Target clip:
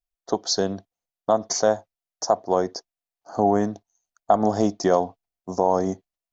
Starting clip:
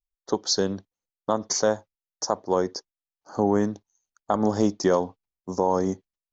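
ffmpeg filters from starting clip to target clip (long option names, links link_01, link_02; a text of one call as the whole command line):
ffmpeg -i in.wav -af "equalizer=frequency=690:width_type=o:width=0.23:gain=13.5" out.wav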